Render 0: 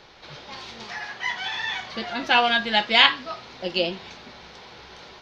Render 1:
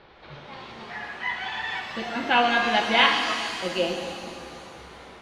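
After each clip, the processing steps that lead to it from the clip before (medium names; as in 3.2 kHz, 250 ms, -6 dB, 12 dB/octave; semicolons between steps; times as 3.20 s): distance through air 330 m; pitch-shifted reverb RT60 2.3 s, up +7 st, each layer -8 dB, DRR 2.5 dB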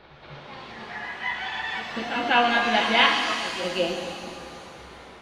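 reverse echo 195 ms -10 dB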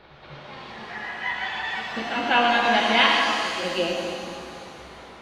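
on a send at -4 dB: high-pass 210 Hz + reverberation RT60 1.3 s, pre-delay 47 ms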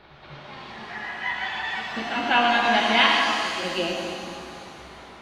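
peaking EQ 500 Hz -6.5 dB 0.21 oct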